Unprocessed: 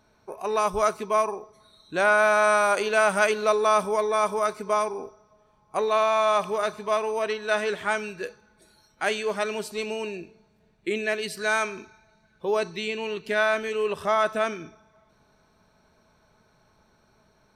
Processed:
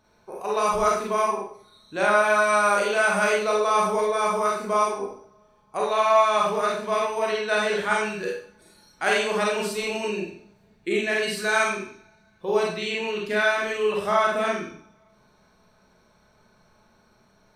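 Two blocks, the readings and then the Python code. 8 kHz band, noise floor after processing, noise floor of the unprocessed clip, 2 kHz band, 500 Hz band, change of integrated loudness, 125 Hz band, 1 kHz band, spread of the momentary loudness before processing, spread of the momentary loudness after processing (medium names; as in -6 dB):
+2.5 dB, -61 dBFS, -64 dBFS, +2.0 dB, +1.0 dB, +1.5 dB, +4.0 dB, +2.0 dB, 14 LU, 13 LU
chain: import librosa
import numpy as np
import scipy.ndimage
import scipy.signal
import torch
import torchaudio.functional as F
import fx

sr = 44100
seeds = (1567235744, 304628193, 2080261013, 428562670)

p1 = fx.rider(x, sr, range_db=10, speed_s=2.0)
p2 = x + (p1 * librosa.db_to_amplitude(0.5))
p3 = fx.rev_schroeder(p2, sr, rt60_s=0.48, comb_ms=31, drr_db=-3.5)
y = p3 * librosa.db_to_amplitude(-9.0)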